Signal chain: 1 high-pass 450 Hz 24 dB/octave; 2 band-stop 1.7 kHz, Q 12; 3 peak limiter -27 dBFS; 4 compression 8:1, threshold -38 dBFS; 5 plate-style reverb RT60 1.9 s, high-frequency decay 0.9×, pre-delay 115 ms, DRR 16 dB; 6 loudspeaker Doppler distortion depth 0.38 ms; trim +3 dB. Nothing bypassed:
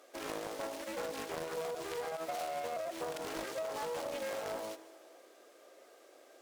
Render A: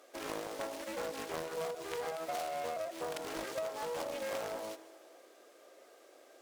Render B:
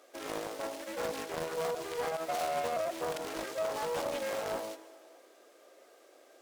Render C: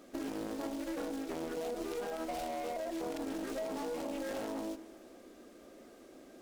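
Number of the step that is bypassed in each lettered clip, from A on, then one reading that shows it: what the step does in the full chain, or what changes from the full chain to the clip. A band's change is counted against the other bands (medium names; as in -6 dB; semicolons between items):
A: 3, crest factor change +4.0 dB; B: 4, mean gain reduction 2.0 dB; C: 1, 250 Hz band +12.0 dB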